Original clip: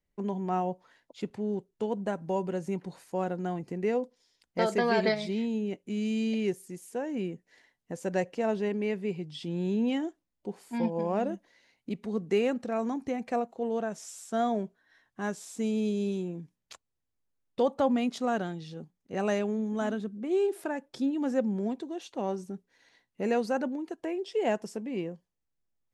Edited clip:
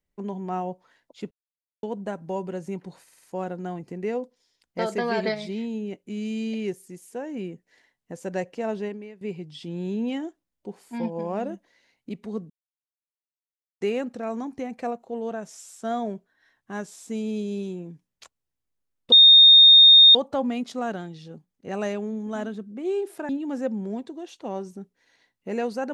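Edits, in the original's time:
1.31–1.83 mute
3.03 stutter 0.05 s, 5 plays
8.64–9.01 fade out quadratic, to -16 dB
12.3 insert silence 1.31 s
17.61 add tone 3680 Hz -8 dBFS 1.03 s
20.75–21.02 cut

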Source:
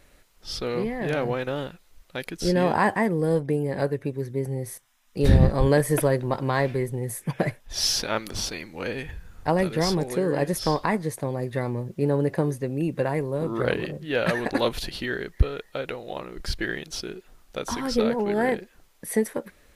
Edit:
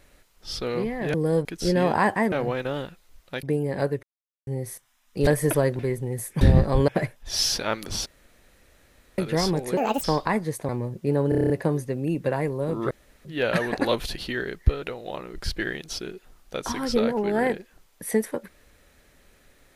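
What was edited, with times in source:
1.14–2.25 swap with 3.12–3.43
4.03–4.47 mute
5.27–5.74 move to 7.32
6.26–6.7 cut
8.5–9.62 room tone
10.21–10.62 speed 153%
11.27–11.63 cut
12.23 stutter 0.03 s, 8 plays
13.64–13.98 room tone
15.55–15.84 cut

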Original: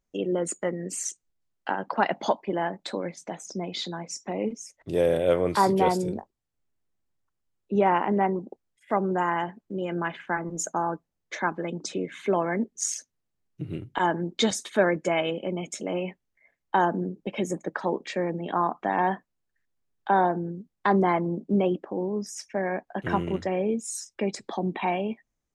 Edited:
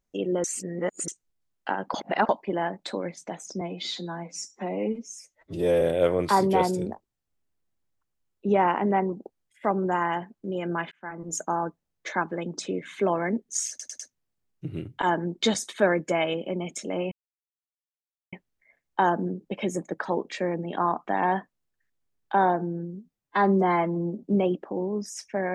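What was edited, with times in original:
0.44–1.08 reverse
1.94–2.29 reverse
3.61–5.08 stretch 1.5×
10.18–10.66 fade in linear
12.96 stutter 0.10 s, 4 plays
16.08 insert silence 1.21 s
20.34–21.44 stretch 1.5×

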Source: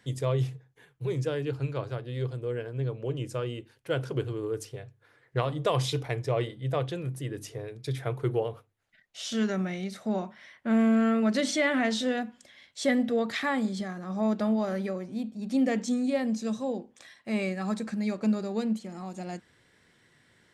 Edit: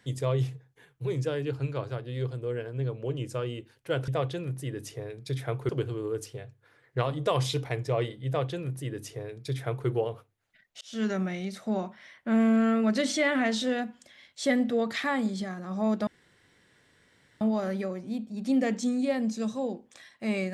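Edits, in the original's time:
6.66–8.27 copy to 4.08
9.2–9.47 fade in
14.46 insert room tone 1.34 s

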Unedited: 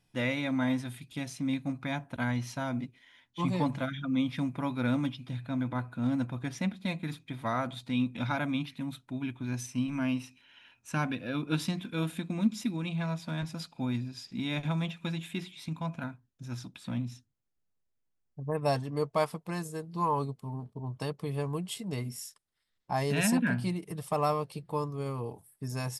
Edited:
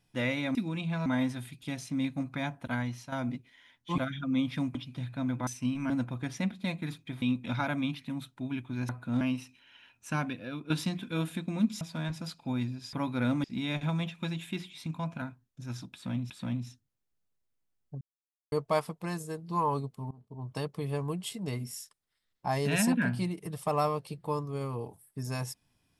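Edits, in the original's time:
2.16–2.61 fade out, to -9 dB
3.47–3.79 cut
4.56–5.07 move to 14.26
5.79–6.11 swap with 9.6–10.03
7.43–7.93 cut
10.91–11.52 fade out, to -9 dB
12.63–13.14 move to 0.55
16.75–17.12 loop, 2 plays
18.46–18.97 mute
20.56–21.01 fade in, from -19.5 dB

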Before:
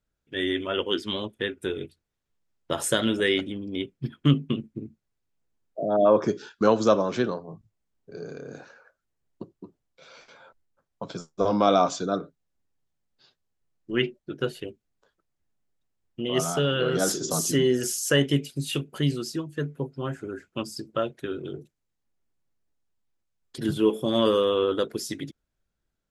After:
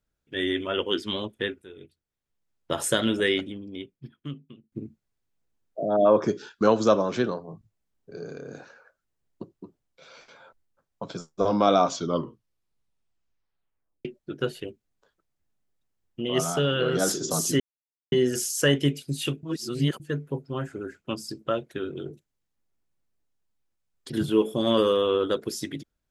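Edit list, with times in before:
1.62–2.74 fade in, from -20 dB
3.25–4.72 fade out quadratic, to -22.5 dB
11.87 tape stop 2.18 s
17.6 insert silence 0.52 s
18.91–19.48 reverse

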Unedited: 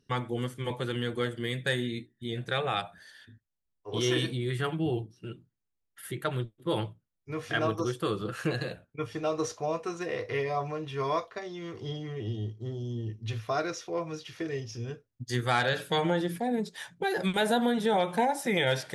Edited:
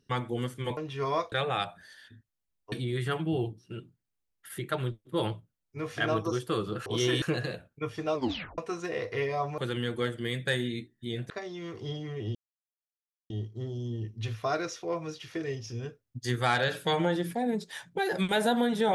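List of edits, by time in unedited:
0.77–2.49 swap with 10.75–11.3
3.89–4.25 move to 8.39
9.32 tape stop 0.43 s
12.35 insert silence 0.95 s

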